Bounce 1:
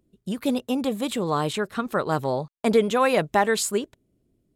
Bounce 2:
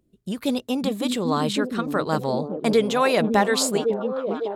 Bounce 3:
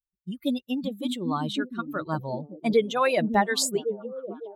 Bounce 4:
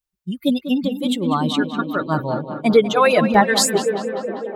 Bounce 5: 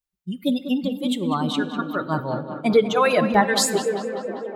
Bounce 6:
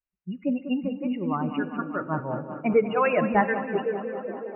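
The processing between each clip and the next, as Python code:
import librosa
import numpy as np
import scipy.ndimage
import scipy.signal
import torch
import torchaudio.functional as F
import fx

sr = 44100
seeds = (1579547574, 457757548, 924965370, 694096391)

y1 = fx.dynamic_eq(x, sr, hz=4600.0, q=1.4, threshold_db=-47.0, ratio=4.0, max_db=6)
y1 = fx.echo_stepped(y1, sr, ms=554, hz=240.0, octaves=0.7, feedback_pct=70, wet_db=-0.5)
y2 = fx.bin_expand(y1, sr, power=2.0)
y3 = fx.echo_tape(y2, sr, ms=196, feedback_pct=82, wet_db=-9.5, lp_hz=3100.0, drive_db=13.0, wow_cents=23)
y3 = y3 * librosa.db_to_amplitude(8.0)
y4 = fx.rev_plate(y3, sr, seeds[0], rt60_s=1.3, hf_ratio=0.6, predelay_ms=0, drr_db=14.0)
y4 = y4 * librosa.db_to_amplitude(-3.5)
y5 = fx.brickwall_lowpass(y4, sr, high_hz=2900.0)
y5 = y5 * librosa.db_to_amplitude(-4.0)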